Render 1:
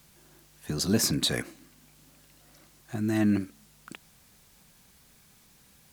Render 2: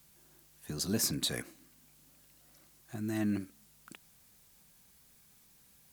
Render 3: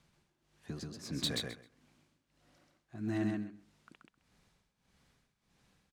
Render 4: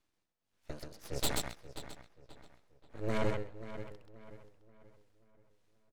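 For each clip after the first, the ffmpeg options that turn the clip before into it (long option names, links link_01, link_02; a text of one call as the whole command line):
ffmpeg -i in.wav -af "highshelf=frequency=8100:gain=8,volume=-8dB" out.wav
ffmpeg -i in.wav -af "tremolo=f=1.6:d=0.92,adynamicsmooth=sensitivity=4:basefreq=4200,aecho=1:1:131|262|393:0.708|0.113|0.0181" out.wav
ffmpeg -i in.wav -filter_complex "[0:a]aeval=exprs='abs(val(0))':channel_layout=same,asplit=2[link_01][link_02];[link_02]adelay=532,lowpass=frequency=3400:poles=1,volume=-8dB,asplit=2[link_03][link_04];[link_04]adelay=532,lowpass=frequency=3400:poles=1,volume=0.54,asplit=2[link_05][link_06];[link_06]adelay=532,lowpass=frequency=3400:poles=1,volume=0.54,asplit=2[link_07][link_08];[link_08]adelay=532,lowpass=frequency=3400:poles=1,volume=0.54,asplit=2[link_09][link_10];[link_10]adelay=532,lowpass=frequency=3400:poles=1,volume=0.54,asplit=2[link_11][link_12];[link_12]adelay=532,lowpass=frequency=3400:poles=1,volume=0.54[link_13];[link_01][link_03][link_05][link_07][link_09][link_11][link_13]amix=inputs=7:normalize=0,aeval=exprs='0.106*(cos(1*acos(clip(val(0)/0.106,-1,1)))-cos(1*PI/2))+0.0335*(cos(6*acos(clip(val(0)/0.106,-1,1)))-cos(6*PI/2))+0.00841*(cos(7*acos(clip(val(0)/0.106,-1,1)))-cos(7*PI/2))':channel_layout=same,volume=-2.5dB" out.wav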